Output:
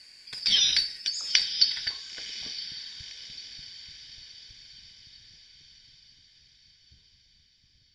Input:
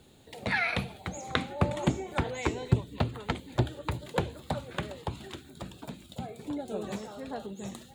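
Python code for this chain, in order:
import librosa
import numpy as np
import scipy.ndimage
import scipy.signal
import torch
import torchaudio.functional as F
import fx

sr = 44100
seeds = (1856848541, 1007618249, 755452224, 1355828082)

y = fx.band_shuffle(x, sr, order='4321')
y = fx.filter_sweep_lowpass(y, sr, from_hz=8600.0, to_hz=110.0, start_s=1.33, end_s=3.11, q=0.94)
y = fx.echo_diffused(y, sr, ms=1012, feedback_pct=54, wet_db=-12.5)
y = y * librosa.db_to_amplitude(5.5)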